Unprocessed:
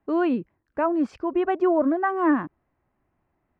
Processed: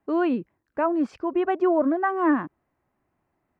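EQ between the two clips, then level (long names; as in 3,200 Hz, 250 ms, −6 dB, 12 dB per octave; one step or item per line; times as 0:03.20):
low-shelf EQ 74 Hz −9.5 dB
0.0 dB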